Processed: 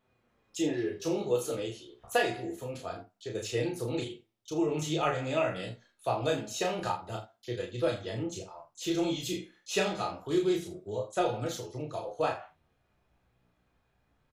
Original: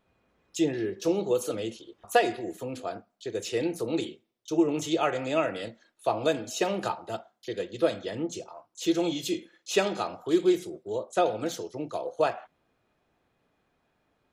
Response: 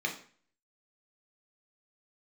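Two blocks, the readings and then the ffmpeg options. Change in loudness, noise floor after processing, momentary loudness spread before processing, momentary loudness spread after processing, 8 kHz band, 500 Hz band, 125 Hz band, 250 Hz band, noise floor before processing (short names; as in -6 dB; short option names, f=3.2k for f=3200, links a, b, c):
-3.5 dB, -74 dBFS, 12 LU, 11 LU, -2.0 dB, -3.5 dB, +3.0 dB, -4.5 dB, -74 dBFS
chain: -filter_complex "[0:a]asubboost=boost=3:cutoff=150,flanger=delay=8:depth=8.4:regen=37:speed=0.26:shape=sinusoidal,asplit=2[a][b];[b]aecho=0:1:33|80:0.708|0.224[c];[a][c]amix=inputs=2:normalize=0"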